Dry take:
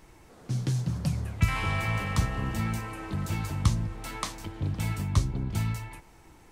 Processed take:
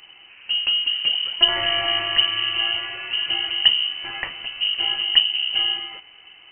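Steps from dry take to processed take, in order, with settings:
voice inversion scrambler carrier 3,000 Hz
level +6 dB

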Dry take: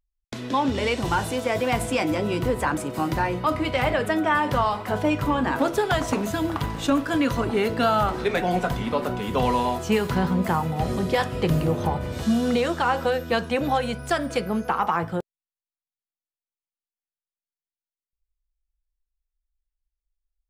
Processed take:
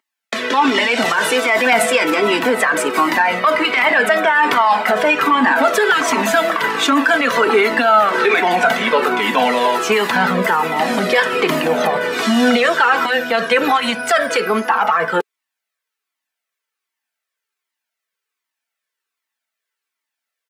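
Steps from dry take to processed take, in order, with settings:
in parallel at −10.5 dB: asymmetric clip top −22 dBFS
on the sum: high-pass filter 250 Hz 24 dB per octave
parametric band 1,800 Hz +10.5 dB 1.7 octaves
comb filter 4.5 ms, depth 36%
boost into a limiter +13 dB
flanger whose copies keep moving one way falling 1.3 Hz

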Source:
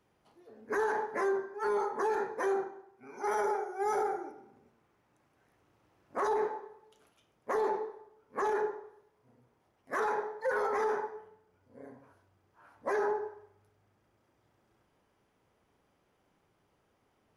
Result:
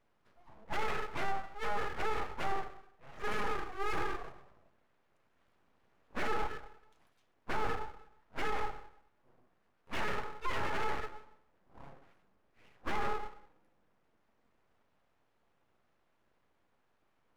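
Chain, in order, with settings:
high-shelf EQ 3,500 Hz −11.5 dB
full-wave rectification

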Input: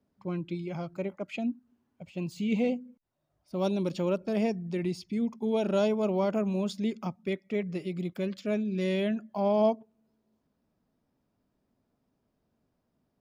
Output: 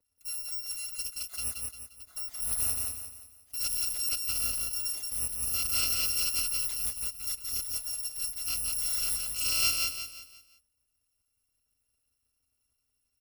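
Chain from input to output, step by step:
samples in bit-reversed order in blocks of 256 samples
repeating echo 175 ms, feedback 39%, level −3 dB
level −4 dB

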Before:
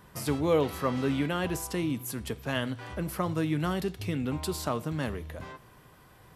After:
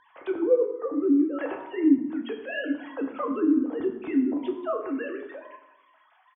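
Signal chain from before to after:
three sine waves on the formant tracks
parametric band 210 Hz +2.5 dB 1.4 octaves
slap from a distant wall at 20 metres, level −27 dB
treble cut that deepens with the level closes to 410 Hz, closed at −25 dBFS
on a send at −2 dB: convolution reverb RT60 0.90 s, pre-delay 5 ms
on the sum: level +2 dB

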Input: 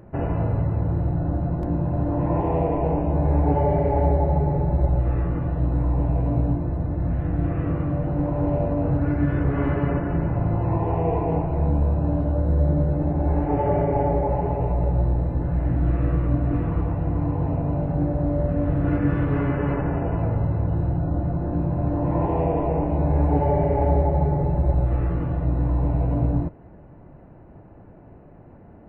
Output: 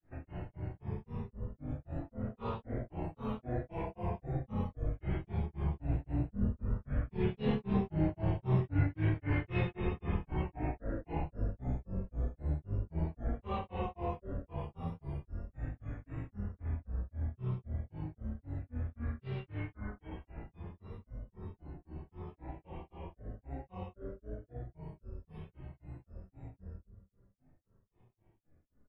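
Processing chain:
source passing by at 0:08.00, 13 m/s, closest 8.1 metres
high shelf with overshoot 1,500 Hz +9 dB, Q 1.5
reversed playback
downward compressor 10 to 1, threshold −34 dBFS, peak gain reduction 15.5 dB
reversed playback
double-tracking delay 33 ms −5 dB
on a send: delay with a band-pass on its return 295 ms, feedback 63%, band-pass 430 Hz, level −17 dB
on the sum: rectangular room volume 210 cubic metres, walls furnished, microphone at 4.3 metres
granular cloud 261 ms, grains 3.8 per second, pitch spread up and down by 7 semitones
level −3.5 dB

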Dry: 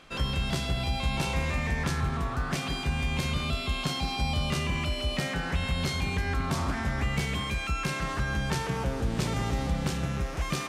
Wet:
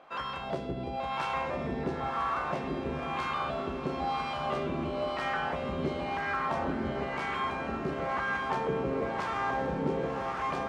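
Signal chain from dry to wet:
LFO wah 0.99 Hz 350–1,200 Hz, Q 2.1
feedback delay with all-pass diffusion 1,084 ms, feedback 56%, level −5 dB
level +7 dB

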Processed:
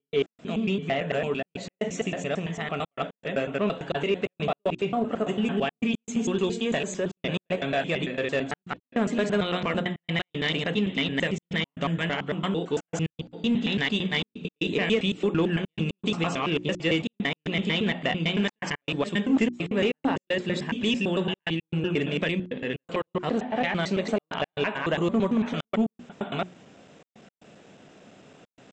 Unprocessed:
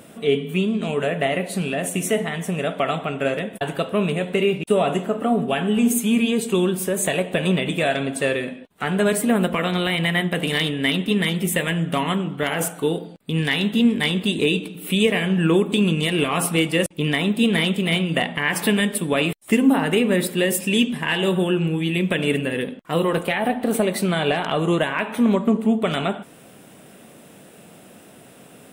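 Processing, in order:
slices reordered back to front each 112 ms, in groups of 4
mains-hum notches 60/120/180/240/300/360 Hz
gate pattern ".x.xxxxxxxx" 116 BPM −60 dB
in parallel at −4.5 dB: gain into a clipping stage and back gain 15.5 dB
on the sum: downsampling to 16,000 Hz
level −8.5 dB

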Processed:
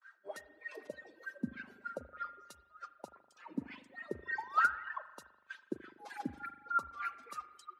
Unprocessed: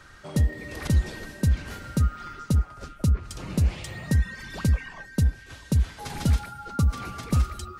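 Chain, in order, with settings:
spectral dynamics exaggerated over time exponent 1.5
RIAA equalisation recording
noise gate with hold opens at −49 dBFS
reverb reduction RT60 1.3 s
downward compressor 6 to 1, threshold −36 dBFS, peak gain reduction 12 dB
sound drawn into the spectrogram rise, 0:04.38–0:04.83, 860–2,000 Hz −37 dBFS
LFO wah 3.3 Hz 240–1,700 Hz, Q 5.2
spring reverb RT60 1.7 s, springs 40 ms, chirp 60 ms, DRR 12 dB
multiband upward and downward expander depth 40%
level +11 dB

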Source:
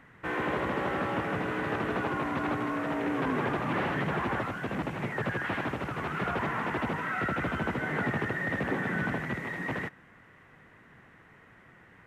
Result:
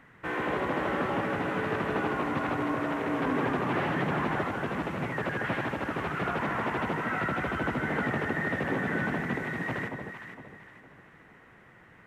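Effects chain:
parametric band 64 Hz −2.5 dB 2.1 octaves
on a send: delay that swaps between a low-pass and a high-pass 230 ms, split 1,000 Hz, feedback 58%, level −3.5 dB

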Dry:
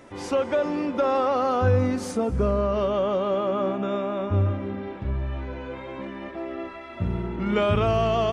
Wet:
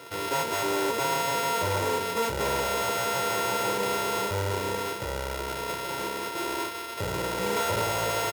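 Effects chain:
samples sorted by size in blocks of 64 samples
tube saturation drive 31 dB, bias 0.55
decimation without filtering 6×
high-pass filter 140 Hz 12 dB per octave
parametric band 220 Hz −4.5 dB 0.47 octaves
comb filter 2.1 ms, depth 86%
hollow resonant body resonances 230/950 Hz, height 11 dB, ringing for 100 ms
level +5.5 dB

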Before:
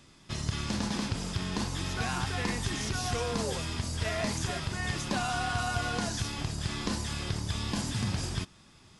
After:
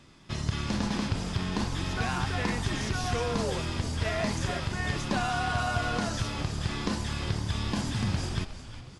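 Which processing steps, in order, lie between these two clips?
high-shelf EQ 5,800 Hz −9.5 dB
echo with shifted repeats 363 ms, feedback 47%, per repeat −110 Hz, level −12.5 dB
level +2.5 dB

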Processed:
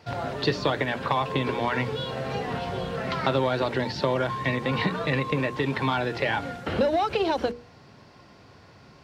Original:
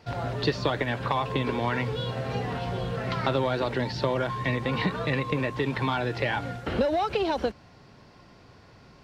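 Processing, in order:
high-pass filter 64 Hz
mains-hum notches 60/120/180/240/300/360/420/480 Hz
level +2 dB

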